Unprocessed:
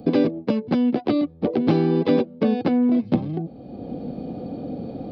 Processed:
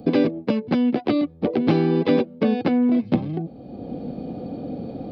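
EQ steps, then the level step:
dynamic equaliser 2,200 Hz, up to +4 dB, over −46 dBFS, Q 1.1
0.0 dB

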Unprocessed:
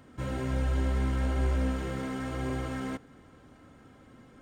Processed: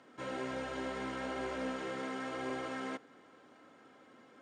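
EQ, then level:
high-pass filter 350 Hz 12 dB per octave
low-pass filter 6,600 Hz 12 dB per octave
−1.0 dB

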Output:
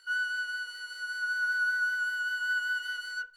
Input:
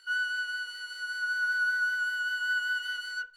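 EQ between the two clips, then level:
parametric band 3,000 Hz −3.5 dB 1 octave
0.0 dB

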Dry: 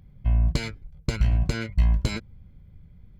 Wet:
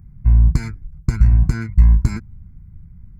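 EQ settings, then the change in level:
low-shelf EQ 410 Hz +7 dB
phaser with its sweep stopped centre 1,300 Hz, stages 4
notch filter 3,900 Hz, Q 8
+2.5 dB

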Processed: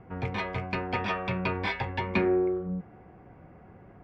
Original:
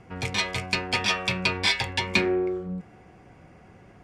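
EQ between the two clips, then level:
low-pass filter 1,500 Hz 12 dB per octave
0.0 dB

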